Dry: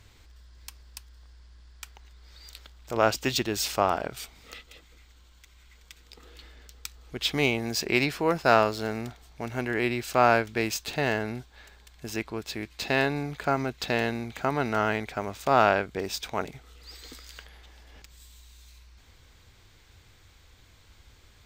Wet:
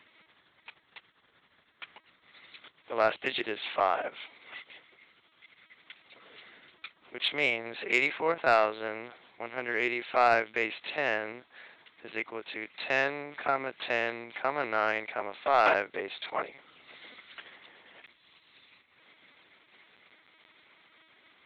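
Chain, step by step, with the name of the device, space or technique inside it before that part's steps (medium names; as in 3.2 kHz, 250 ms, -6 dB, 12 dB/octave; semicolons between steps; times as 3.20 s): talking toy (LPC vocoder at 8 kHz pitch kept; high-pass 420 Hz 12 dB/octave; peaking EQ 2.1 kHz +6 dB 0.25 oct; saturation -12.5 dBFS, distortion -17 dB)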